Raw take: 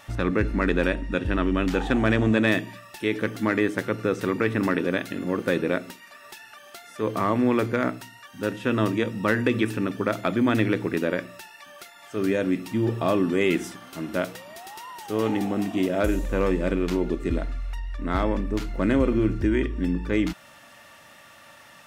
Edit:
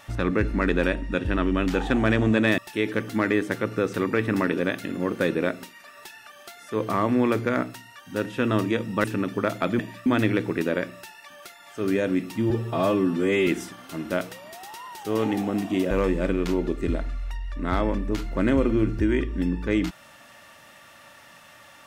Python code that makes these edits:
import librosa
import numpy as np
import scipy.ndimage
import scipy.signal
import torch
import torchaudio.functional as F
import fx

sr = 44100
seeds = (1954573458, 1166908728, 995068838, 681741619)

y = fx.edit(x, sr, fx.move(start_s=2.58, length_s=0.27, to_s=10.42),
    fx.cut(start_s=9.31, length_s=0.36),
    fx.stretch_span(start_s=12.86, length_s=0.65, factor=1.5),
    fx.cut(start_s=15.94, length_s=0.39), tone=tone)